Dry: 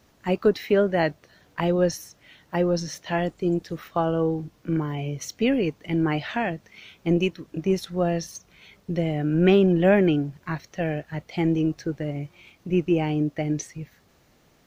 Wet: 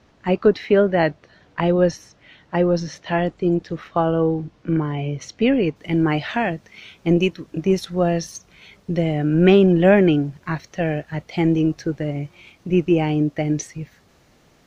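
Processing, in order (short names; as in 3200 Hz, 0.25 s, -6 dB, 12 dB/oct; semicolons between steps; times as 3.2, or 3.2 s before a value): Bessel low-pass 3800 Hz, order 2, from 5.75 s 11000 Hz; gain +4.5 dB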